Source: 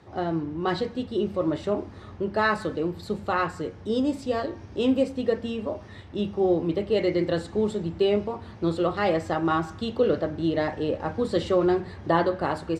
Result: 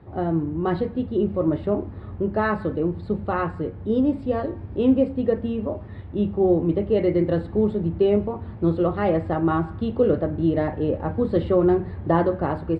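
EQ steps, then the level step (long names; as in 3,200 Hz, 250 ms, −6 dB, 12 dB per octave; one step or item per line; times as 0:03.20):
moving average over 7 samples
spectral tilt −2.5 dB per octave
0.0 dB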